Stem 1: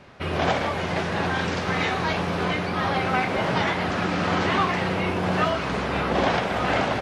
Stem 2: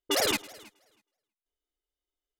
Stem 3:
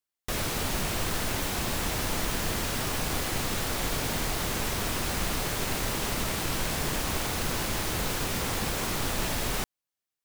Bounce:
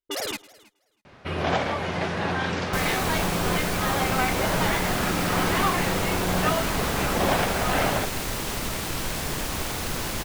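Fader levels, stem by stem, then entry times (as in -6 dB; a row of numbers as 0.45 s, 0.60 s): -1.5 dB, -4.0 dB, +0.5 dB; 1.05 s, 0.00 s, 2.45 s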